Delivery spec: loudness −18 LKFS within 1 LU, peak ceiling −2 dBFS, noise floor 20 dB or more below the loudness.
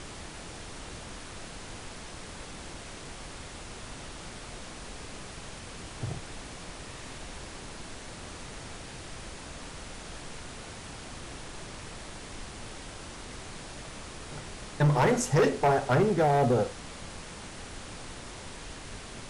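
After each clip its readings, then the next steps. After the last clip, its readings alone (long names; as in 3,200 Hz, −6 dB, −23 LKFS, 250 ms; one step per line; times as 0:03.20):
share of clipped samples 0.7%; peaks flattened at −18.5 dBFS; background noise floor −44 dBFS; target noise floor −54 dBFS; integrated loudness −34.0 LKFS; sample peak −18.5 dBFS; target loudness −18.0 LKFS
→ clipped peaks rebuilt −18.5 dBFS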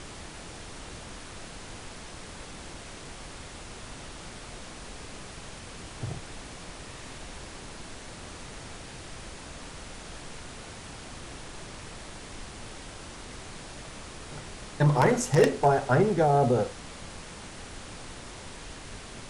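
share of clipped samples 0.0%; background noise floor −44 dBFS; target noise floor −53 dBFS
→ noise reduction from a noise print 9 dB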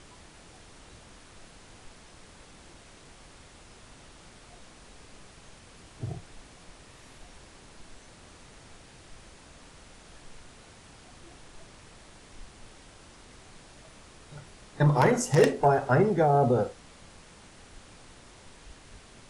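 background noise floor −53 dBFS; integrated loudness −24.5 LKFS; sample peak −9.5 dBFS; target loudness −18.0 LKFS
→ level +6.5 dB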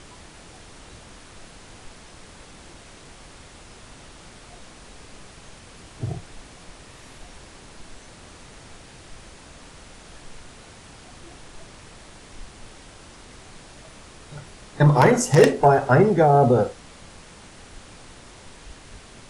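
integrated loudness −18.0 LKFS; sample peak −3.0 dBFS; background noise floor −46 dBFS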